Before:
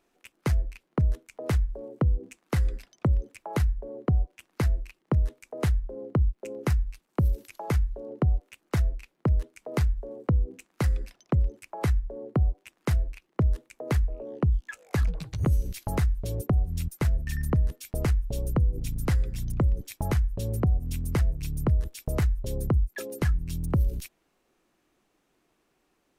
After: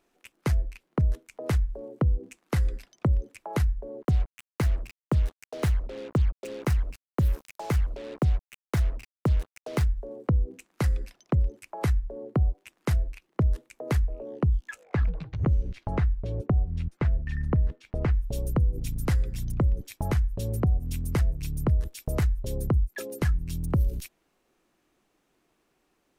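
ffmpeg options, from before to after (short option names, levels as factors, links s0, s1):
-filter_complex "[0:a]asettb=1/sr,asplit=3[s0][s1][s2];[s0]atrim=end=4.024[s3];[s1]atrim=start=4.02:end=9.84,asetpts=PTS-STARTPTS,afade=t=in:d=0.004:c=qsin,afade=t=out:st=5.816:d=0.004:c=qsin,acrusher=bits=6:mix=0:aa=0.5[s4];[s2]atrim=start=9.836[s5];[s3][s4]acrossfade=d=0.004:c1=hsin:c2=qsin[s6];[s6][s5]acrossfade=d=0.004:c1=qsin:c2=hsin,asettb=1/sr,asplit=3[s7][s8][s9];[s7]atrim=end=14.844[s10];[s8]atrim=start=14.84:end=18.15,asetpts=PTS-STARTPTS,afade=t=in:d=0.004:c=qsin,afade=t=out:st=3.306:d=0.004:c=qsin,lowpass=2500[s11];[s9]atrim=start=18.146[s12];[s10][s11]acrossfade=d=0.004:c1=hsin:c2=qsin[s13];[s13][s12]acrossfade=d=0.004:c1=qsin:c2=hsin,asettb=1/sr,asplit=3[s14][s15][s16];[s14]atrim=end=19.514[s17];[s15]atrim=start=19.51:end=20.18,asetpts=PTS-STARTPTS,afade=t=in:d=0.004:c=qsin,afade=t=out:st=0.666:d=0.004:c=qsin,highshelf=f=5400:g=-4[s18];[s16]atrim=start=20.176[s19];[s17][s18]acrossfade=d=0.004:c1=hsin:c2=qsin[s20];[s20][s19]acrossfade=d=0.004:c1=qsin:c2=hsin"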